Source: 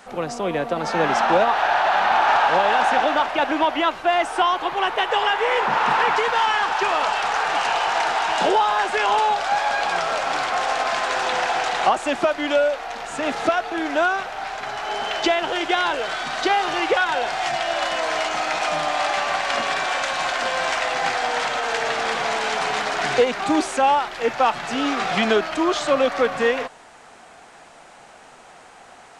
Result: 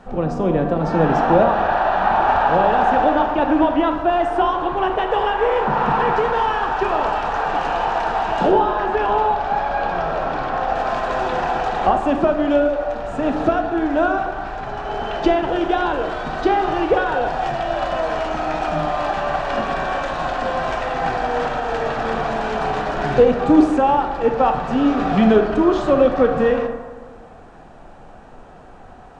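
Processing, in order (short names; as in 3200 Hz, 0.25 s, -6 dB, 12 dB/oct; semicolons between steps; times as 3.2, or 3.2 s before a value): tilt -4.5 dB/oct; notch 2100 Hz, Q 9.7; 8.49–10.76 air absorption 94 m; reverb RT60 1.4 s, pre-delay 18 ms, DRR 5 dB; gain -1 dB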